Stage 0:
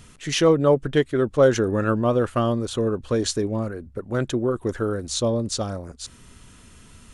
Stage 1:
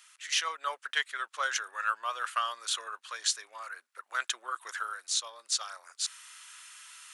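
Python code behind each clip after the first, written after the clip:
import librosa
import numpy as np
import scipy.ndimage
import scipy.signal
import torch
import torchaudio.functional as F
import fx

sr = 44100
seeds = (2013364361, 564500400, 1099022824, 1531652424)

y = scipy.signal.sosfilt(scipy.signal.butter(4, 1200.0, 'highpass', fs=sr, output='sos'), x)
y = fx.rider(y, sr, range_db=4, speed_s=0.5)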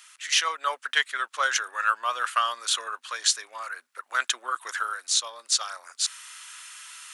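y = fx.peak_eq(x, sr, hz=250.0, db=6.5, octaves=0.24)
y = y * librosa.db_to_amplitude(6.5)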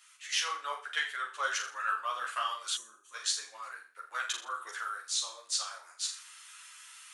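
y = fx.room_flutter(x, sr, wall_m=7.0, rt60_s=0.4)
y = fx.spec_box(y, sr, start_s=2.76, length_s=0.38, low_hz=390.0, high_hz=5700.0, gain_db=-17)
y = fx.ensemble(y, sr)
y = y * librosa.db_to_amplitude(-6.0)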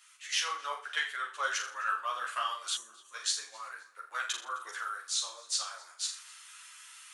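y = fx.echo_feedback(x, sr, ms=262, feedback_pct=35, wet_db=-24)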